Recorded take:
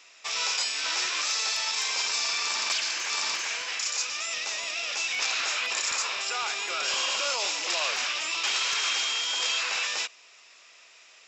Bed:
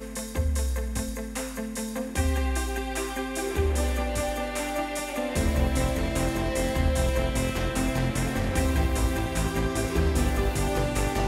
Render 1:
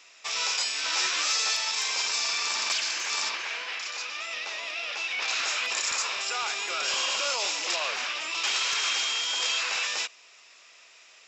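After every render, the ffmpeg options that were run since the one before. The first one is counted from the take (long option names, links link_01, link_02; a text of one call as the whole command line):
ffmpeg -i in.wav -filter_complex "[0:a]asettb=1/sr,asplit=3[link_01][link_02][link_03];[link_01]atrim=end=0.924[link_04];[link_02]atrim=start=0.92:end=1.56,asetpts=PTS-STARTPTS,afade=type=in:duration=0.004:curve=qsin,afade=type=out:start_time=0.636:duration=0.004:curve=qsin,asplit=2[link_05][link_06];[link_06]adelay=13,volume=-3dB[link_07];[link_05][link_07]amix=inputs=2:normalize=0,atrim=end_sample=28224[link_08];[link_03]atrim=start=1.556[link_09];[link_04][link_08]acrossfade=duration=0.004:curve1=hsin:curve2=qsin[link_10];[link_10][link_09]acrossfade=duration=0.004:curve1=qsin:curve2=hsin,asettb=1/sr,asplit=3[link_11][link_12][link_13];[link_11]atrim=end=3.294[link_14];[link_12]atrim=start=3.29:end=5.28,asetpts=PTS-STARTPTS,afade=type=in:duration=0.004:curve=qsin,afade=type=out:start_time=1.986:duration=0.004:curve=qsin,acrossover=split=200 4600:gain=0.141 1 0.126[link_15][link_16][link_17];[link_15][link_16][link_17]amix=inputs=3:normalize=0[link_18];[link_13]atrim=start=5.276[link_19];[link_14][link_18]acrossfade=duration=0.004:curve1=hsin:curve2=qsin[link_20];[link_20][link_19]acrossfade=duration=0.004:curve1=qsin:curve2=hsin,asettb=1/sr,asplit=3[link_21][link_22][link_23];[link_21]atrim=end=7.764[link_24];[link_22]atrim=start=7.76:end=8.35,asetpts=PTS-STARTPTS,afade=type=in:duration=0.004:curve=qsin,afade=type=out:start_time=0.586:duration=0.004:curve=qsin,highshelf=frequency=5600:gain=-9.5[link_25];[link_23]atrim=start=8.346[link_26];[link_24][link_25]acrossfade=duration=0.004:curve1=hsin:curve2=qsin[link_27];[link_27][link_26]acrossfade=duration=0.004:curve1=qsin:curve2=hsin" out.wav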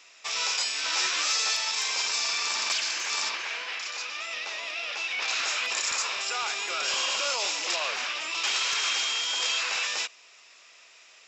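ffmpeg -i in.wav -af anull out.wav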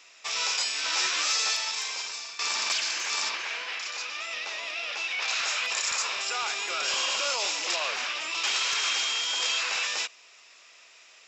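ffmpeg -i in.wav -filter_complex "[0:a]asettb=1/sr,asplit=3[link_01][link_02][link_03];[link_01]atrim=end=5.124[link_04];[link_02]atrim=start=5.12:end=6,asetpts=PTS-STARTPTS,afade=type=in:duration=0.004:curve=qsin,afade=type=out:start_time=0.876:duration=0.004:curve=qsin,equalizer=frequency=310:width=2.1:gain=-6.5[link_05];[link_03]atrim=start=5.996[link_06];[link_04][link_05]acrossfade=duration=0.004:curve1=hsin:curve2=qsin[link_07];[link_07][link_06]acrossfade=duration=0.004:curve1=qsin:curve2=hsin,asplit=2[link_08][link_09];[link_08]atrim=end=2.39,asetpts=PTS-STARTPTS,afade=type=out:start_time=1.47:duration=0.92:silence=0.16788[link_10];[link_09]atrim=start=2.39,asetpts=PTS-STARTPTS,afade=type=in:duration=0.004:curve=hsin:silence=0.16788[link_11];[link_10][link_11]concat=n=2:v=0:a=1" out.wav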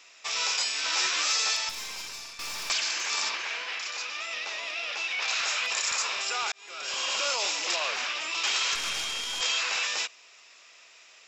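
ffmpeg -i in.wav -filter_complex "[0:a]asettb=1/sr,asplit=3[link_01][link_02][link_03];[link_01]atrim=end=1.694[link_04];[link_02]atrim=start=1.69:end=2.7,asetpts=PTS-STARTPTS,afade=type=in:duration=0.004:curve=qsin,afade=type=out:start_time=1.006:duration=0.004:curve=qsin,aeval=exprs='(tanh(44.7*val(0)+0.55)-tanh(0.55))/44.7':channel_layout=same[link_05];[link_03]atrim=start=2.696[link_06];[link_04][link_05]acrossfade=duration=0.004:curve1=hsin:curve2=qsin[link_07];[link_07][link_06]acrossfade=duration=0.004:curve1=qsin:curve2=hsin,asettb=1/sr,asplit=3[link_08][link_09][link_10];[link_08]atrim=end=8.754[link_11];[link_09]atrim=start=8.75:end=9.41,asetpts=PTS-STARTPTS,afade=type=in:duration=0.004:curve=qsin,afade=type=out:start_time=0.656:duration=0.004:curve=qsin,aeval=exprs='(tanh(10*val(0)+0.75)-tanh(0.75))/10':channel_layout=same[link_12];[link_10]atrim=start=9.406[link_13];[link_11][link_12]acrossfade=duration=0.004:curve1=hsin:curve2=qsin[link_14];[link_14][link_13]acrossfade=duration=0.004:curve1=qsin:curve2=hsin,asplit=2[link_15][link_16];[link_15]atrim=end=6.52,asetpts=PTS-STARTPTS,afade=type=out:start_time=6.516:duration=0.004:curve=hsin[link_17];[link_16]atrim=start=6.52,asetpts=PTS-STARTPTS,afade=type=in:duration=0.69[link_18];[link_17][link_18]concat=n=2:v=0:a=1" out.wav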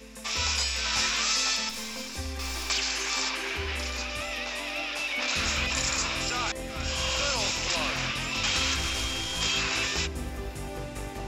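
ffmpeg -i in.wav -i bed.wav -filter_complex "[1:a]volume=-10.5dB[link_01];[0:a][link_01]amix=inputs=2:normalize=0" out.wav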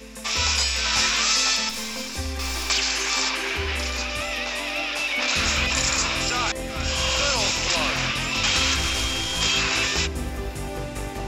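ffmpeg -i in.wav -af "volume=5.5dB" out.wav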